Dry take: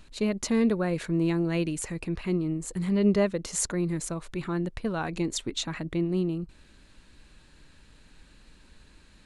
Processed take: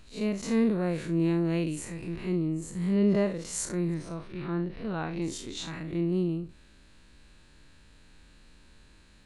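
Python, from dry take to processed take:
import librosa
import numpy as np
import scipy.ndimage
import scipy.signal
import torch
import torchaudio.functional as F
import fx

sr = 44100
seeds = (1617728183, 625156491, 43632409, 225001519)

y = fx.spec_blur(x, sr, span_ms=103.0)
y = fx.savgol(y, sr, points=15, at=(3.94, 5.22))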